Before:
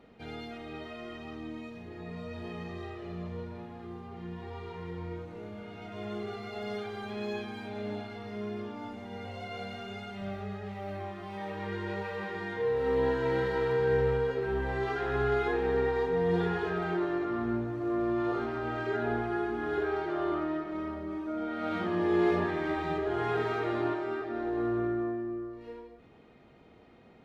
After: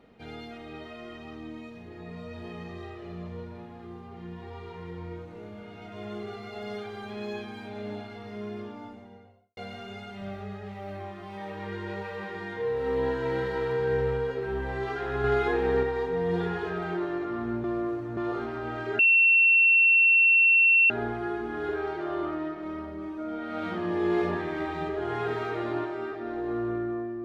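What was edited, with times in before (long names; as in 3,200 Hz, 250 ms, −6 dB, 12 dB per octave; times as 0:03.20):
0:08.58–0:09.57: fade out and dull
0:15.24–0:15.83: clip gain +3.5 dB
0:17.64–0:18.17: reverse
0:18.99: insert tone 2,710 Hz −16 dBFS 1.91 s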